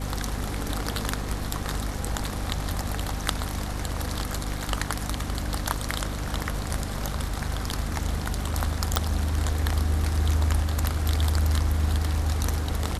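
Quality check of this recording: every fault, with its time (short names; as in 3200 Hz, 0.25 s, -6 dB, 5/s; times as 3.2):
hum 50 Hz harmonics 5 -32 dBFS
8.96 pop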